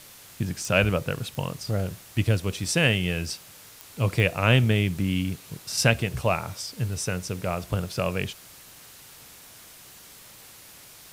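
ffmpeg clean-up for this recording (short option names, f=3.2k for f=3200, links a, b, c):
-af "adeclick=t=4,afwtdn=0.0045"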